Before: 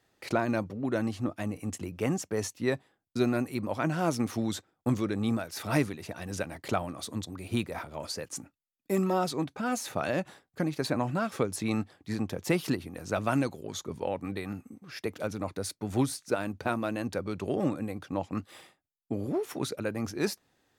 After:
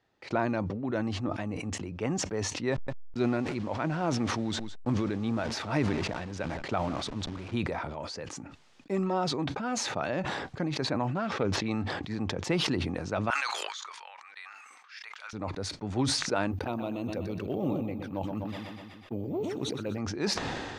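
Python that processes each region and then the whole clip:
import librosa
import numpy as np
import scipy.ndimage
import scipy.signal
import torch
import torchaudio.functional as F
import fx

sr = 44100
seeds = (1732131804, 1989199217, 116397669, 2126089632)

y = fx.chain(x, sr, fx.delta_hold(step_db=-43.5),
    fx.echo_single(ms=161, db=-23.5), at=(2.72, 7.55))
y = fx.chain(y, sr, fx.median_filter(points=5),
    fx.doppler_dist(depth_ms=0.17), at=(11.14, 11.66))
y = fx.chain(y, sr, fx.highpass(hz=1200.0, slope=24),
    fx.sustainer(db_per_s=110.0), at=(13.3, 15.33))
y = fx.chain(y, sr, fx.env_flanger(rest_ms=5.4, full_db=-28.5),
    fx.echo_feedback(ms=124, feedback_pct=46, wet_db=-9),
    fx.resample_bad(factor=3, down='filtered', up='zero_stuff'), at=(16.51, 19.98))
y = scipy.signal.sosfilt(scipy.signal.bessel(4, 4500.0, 'lowpass', norm='mag', fs=sr, output='sos'), y)
y = fx.peak_eq(y, sr, hz=890.0, db=3.5, octaves=0.36)
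y = fx.sustainer(y, sr, db_per_s=28.0)
y = y * librosa.db_to_amplitude(-2.5)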